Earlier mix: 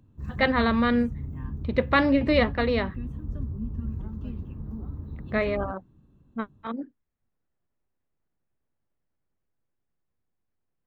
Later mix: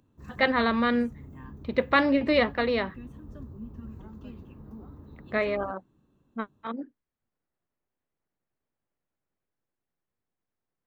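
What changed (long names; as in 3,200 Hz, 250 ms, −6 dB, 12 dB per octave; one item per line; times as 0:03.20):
background: add bass and treble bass −5 dB, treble +3 dB
master: add low-shelf EQ 150 Hz −9.5 dB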